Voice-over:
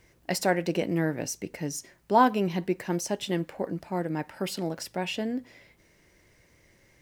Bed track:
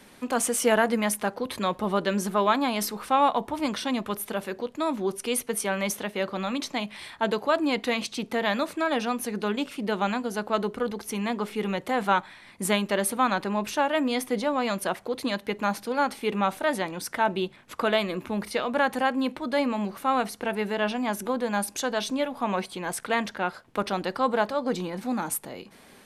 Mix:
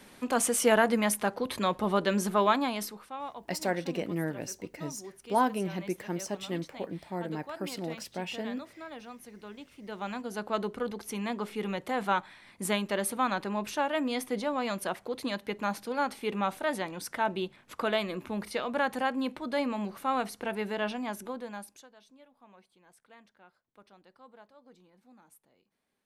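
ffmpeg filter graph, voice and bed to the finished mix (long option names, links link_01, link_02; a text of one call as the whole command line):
ffmpeg -i stem1.wav -i stem2.wav -filter_complex "[0:a]adelay=3200,volume=-5.5dB[link_01];[1:a]volume=11.5dB,afade=type=out:start_time=2.44:duration=0.66:silence=0.149624,afade=type=in:start_time=9.76:duration=0.71:silence=0.223872,afade=type=out:start_time=20.79:duration=1.1:silence=0.0562341[link_02];[link_01][link_02]amix=inputs=2:normalize=0" out.wav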